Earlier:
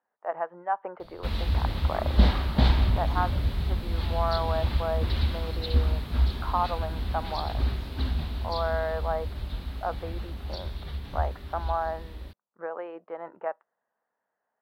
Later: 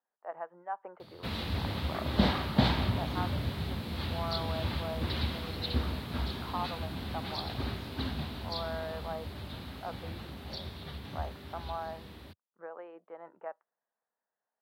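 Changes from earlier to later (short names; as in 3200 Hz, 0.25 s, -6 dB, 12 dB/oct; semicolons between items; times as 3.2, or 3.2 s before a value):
speech -9.5 dB; master: add HPF 93 Hz 24 dB/oct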